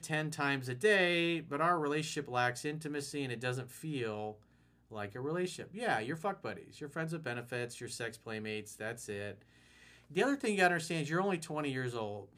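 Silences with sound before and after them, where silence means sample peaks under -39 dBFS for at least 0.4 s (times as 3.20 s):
4.32–4.93 s
9.32–10.16 s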